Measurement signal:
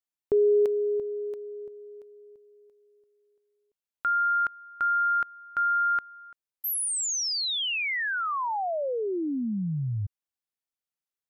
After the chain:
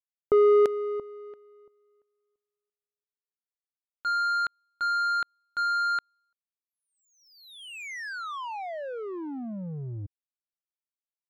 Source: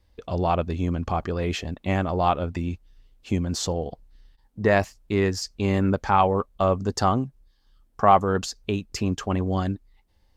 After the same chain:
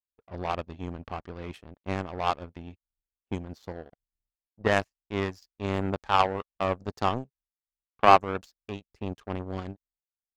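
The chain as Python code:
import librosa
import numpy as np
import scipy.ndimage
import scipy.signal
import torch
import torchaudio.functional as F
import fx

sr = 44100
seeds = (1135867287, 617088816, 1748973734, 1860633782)

y = fx.env_lowpass(x, sr, base_hz=1100.0, full_db=-17.0)
y = fx.power_curve(y, sr, exponent=2.0)
y = F.gain(torch.from_numpy(y), 3.5).numpy()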